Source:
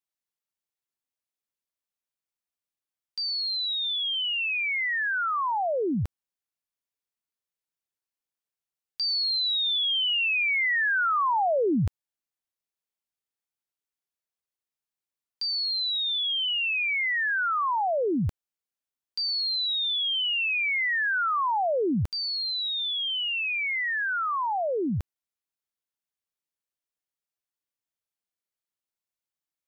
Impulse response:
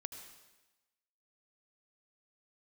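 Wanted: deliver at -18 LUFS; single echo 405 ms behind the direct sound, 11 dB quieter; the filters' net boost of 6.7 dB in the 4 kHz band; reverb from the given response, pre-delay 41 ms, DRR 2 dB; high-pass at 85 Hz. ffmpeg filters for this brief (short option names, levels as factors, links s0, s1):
-filter_complex "[0:a]highpass=85,equalizer=f=4000:t=o:g=8,aecho=1:1:405:0.282,asplit=2[s0][s1];[1:a]atrim=start_sample=2205,adelay=41[s2];[s1][s2]afir=irnorm=-1:irlink=0,volume=1.12[s3];[s0][s3]amix=inputs=2:normalize=0"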